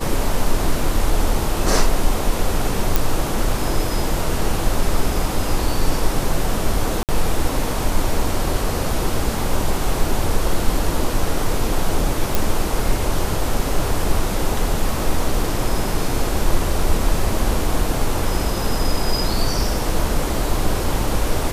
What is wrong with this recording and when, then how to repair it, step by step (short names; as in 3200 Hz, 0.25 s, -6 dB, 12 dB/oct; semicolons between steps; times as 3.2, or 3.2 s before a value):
2.96 pop
7.03–7.09 gap 58 ms
12.35 pop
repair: de-click; interpolate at 7.03, 58 ms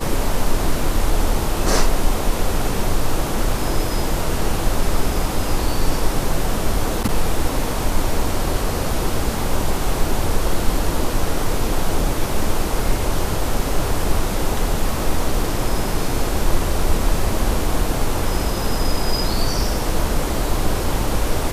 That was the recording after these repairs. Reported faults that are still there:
none